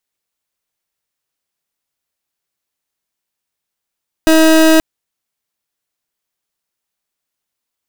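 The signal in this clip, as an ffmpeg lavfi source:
ffmpeg -f lavfi -i "aevalsrc='0.398*(2*lt(mod(319*t,1),0.29)-1)':duration=0.53:sample_rate=44100" out.wav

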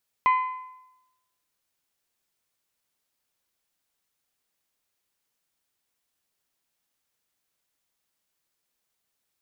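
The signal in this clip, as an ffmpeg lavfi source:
ffmpeg -f lavfi -i "aevalsrc='0.178*pow(10,-3*t/0.93)*sin(2*PI*1020*t)+0.0562*pow(10,-3*t/0.755)*sin(2*PI*2040*t)+0.0178*pow(10,-3*t/0.715)*sin(2*PI*2448*t)+0.00562*pow(10,-3*t/0.669)*sin(2*PI*3060*t)+0.00178*pow(10,-3*t/0.614)*sin(2*PI*4080*t)':duration=1.55:sample_rate=44100" out.wav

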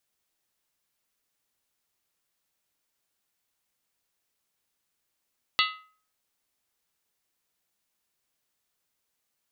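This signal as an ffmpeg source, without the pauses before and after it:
ffmpeg -f lavfi -i "aevalsrc='0.0708*pow(10,-3*t/0.46)*sin(2*PI*1270*t)+0.0668*pow(10,-3*t/0.364)*sin(2*PI*2024.4*t)+0.0631*pow(10,-3*t/0.315)*sin(2*PI*2712.7*t)+0.0596*pow(10,-3*t/0.304)*sin(2*PI*2915.9*t)+0.0562*pow(10,-3*t/0.282)*sin(2*PI*3369.3*t)+0.0531*pow(10,-3*t/0.269)*sin(2*PI*3705.9*t)+0.0501*pow(10,-3*t/0.259)*sin(2*PI*4008.1*t)+0.0473*pow(10,-3*t/0.246)*sin(2*PI*4446.3*t)':duration=0.63:sample_rate=44100" out.wav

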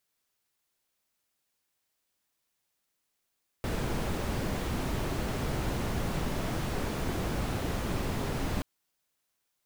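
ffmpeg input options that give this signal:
ffmpeg -f lavfi -i "anoisesrc=color=brown:amplitude=0.132:duration=4.98:sample_rate=44100:seed=1" out.wav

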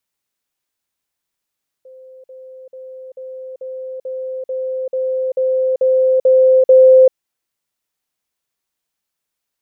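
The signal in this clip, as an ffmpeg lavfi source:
ffmpeg -f lavfi -i "aevalsrc='pow(10,(-37+3*floor(t/0.44))/20)*sin(2*PI*519*t)*clip(min(mod(t,0.44),0.39-mod(t,0.44))/0.005,0,1)':duration=5.28:sample_rate=44100" out.wav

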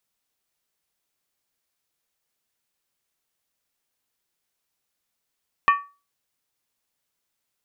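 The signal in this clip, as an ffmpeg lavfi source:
ffmpeg -f lavfi -i "aevalsrc='0.299*pow(10,-3*t/0.31)*sin(2*PI*1140*t)+0.141*pow(10,-3*t/0.246)*sin(2*PI*1817.2*t)+0.0668*pow(10,-3*t/0.212)*sin(2*PI*2435*t)+0.0316*pow(10,-3*t/0.205)*sin(2*PI*2617.4*t)+0.015*pow(10,-3*t/0.19)*sin(2*PI*3024.4*t)':duration=0.63:sample_rate=44100" out.wav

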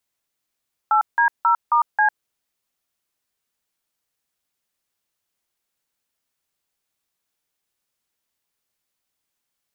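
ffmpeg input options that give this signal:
ffmpeg -f lavfi -i "aevalsrc='0.158*clip(min(mod(t,0.269),0.102-mod(t,0.269))/0.002,0,1)*(eq(floor(t/0.269),0)*(sin(2*PI*852*mod(t,0.269))+sin(2*PI*1336*mod(t,0.269)))+eq(floor(t/0.269),1)*(sin(2*PI*941*mod(t,0.269))+sin(2*PI*1633*mod(t,0.269)))+eq(floor(t/0.269),2)*(sin(2*PI*941*mod(t,0.269))+sin(2*PI*1336*mod(t,0.269)))+eq(floor(t/0.269),3)*(sin(2*PI*941*mod(t,0.269))+sin(2*PI*1209*mod(t,0.269)))+eq(floor(t/0.269),4)*(sin(2*PI*852*mod(t,0.269))+sin(2*PI*1633*mod(t,0.269))))':duration=1.345:sample_rate=44100" out.wav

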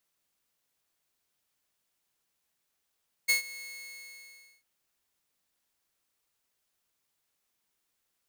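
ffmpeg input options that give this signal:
ffmpeg -f lavfi -i "aevalsrc='0.126*(2*mod(2180*t,1)-1)':duration=1.35:sample_rate=44100,afade=type=in:duration=0.018,afade=type=out:start_time=0.018:duration=0.12:silence=0.1,afade=type=out:start_time=0.33:duration=1.02" out.wav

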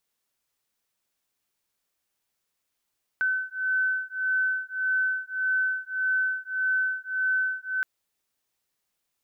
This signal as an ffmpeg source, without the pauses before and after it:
ffmpeg -f lavfi -i "aevalsrc='0.0447*(sin(2*PI*1520*t)+sin(2*PI*1521.7*t))':duration=4.62:sample_rate=44100" out.wav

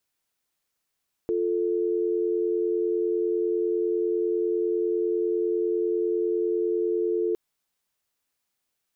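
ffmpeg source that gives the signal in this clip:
ffmpeg -f lavfi -i "aevalsrc='0.0562*(sin(2*PI*350*t)+sin(2*PI*440*t))':duration=6.06:sample_rate=44100" out.wav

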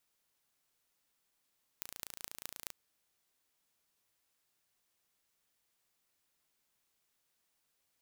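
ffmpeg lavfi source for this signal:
ffmpeg -f lavfi -i "aevalsrc='0.251*eq(mod(n,1558),0)*(0.5+0.5*eq(mod(n,9348),0))':duration=0.89:sample_rate=44100" out.wav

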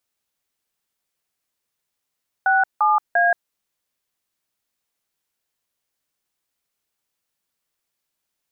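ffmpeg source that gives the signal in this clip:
ffmpeg -f lavfi -i "aevalsrc='0.15*clip(min(mod(t,0.346),0.177-mod(t,0.346))/0.002,0,1)*(eq(floor(t/0.346),0)*(sin(2*PI*770*mod(t,0.346))+sin(2*PI*1477*mod(t,0.346)))+eq(floor(t/0.346),1)*(sin(2*PI*852*mod(t,0.346))+sin(2*PI*1209*mod(t,0.346)))+eq(floor(t/0.346),2)*(sin(2*PI*697*mod(t,0.346))+sin(2*PI*1633*mod(t,0.346))))':duration=1.038:sample_rate=44100" out.wav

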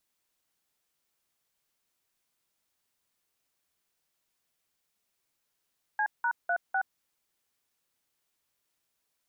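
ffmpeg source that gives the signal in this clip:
ffmpeg -f lavfi -i "aevalsrc='0.0422*clip(min(mod(t,0.251),0.072-mod(t,0.251))/0.002,0,1)*(eq(floor(t/0.251),0)*(sin(2*PI*852*mod(t,0.251))+sin(2*PI*1633*mod(t,0.251)))+eq(floor(t/0.251),1)*(sin(2*PI*941*mod(t,0.251))+sin(2*PI*1477*mod(t,0.251)))+eq(floor(t/0.251),2)*(sin(2*PI*697*mod(t,0.251))+sin(2*PI*1477*mod(t,0.251)))+eq(floor(t/0.251),3)*(sin(2*PI*770*mod(t,0.251))+sin(2*PI*1477*mod(t,0.251))))':duration=1.004:sample_rate=44100" out.wav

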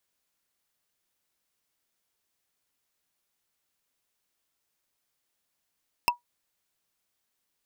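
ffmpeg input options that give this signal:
ffmpeg -f lavfi -i "aevalsrc='0.168*pow(10,-3*t/0.13)*sin(2*PI*965*t)+0.15*pow(10,-3*t/0.038)*sin(2*PI*2660.5*t)+0.133*pow(10,-3*t/0.017)*sin(2*PI*5214.9*t)+0.119*pow(10,-3*t/0.009)*sin(2*PI*8620.3*t)+0.106*pow(10,-3*t/0.006)*sin(2*PI*12873.1*t)':duration=0.45:sample_rate=44100" out.wav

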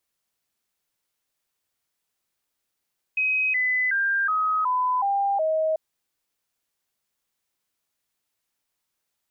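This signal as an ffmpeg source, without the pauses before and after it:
ffmpeg -f lavfi -i "aevalsrc='0.1*clip(min(mod(t,0.37),0.37-mod(t,0.37))/0.005,0,1)*sin(2*PI*2530*pow(2,-floor(t/0.37)/3)*mod(t,0.37))':duration=2.59:sample_rate=44100" out.wav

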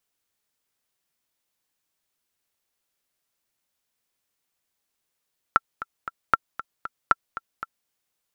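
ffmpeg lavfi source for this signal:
ffmpeg -f lavfi -i "aevalsrc='pow(10,(-3-15*gte(mod(t,3*60/232),60/232))/20)*sin(2*PI*1350*mod(t,60/232))*exp(-6.91*mod(t,60/232)/0.03)':duration=2.32:sample_rate=44100" out.wav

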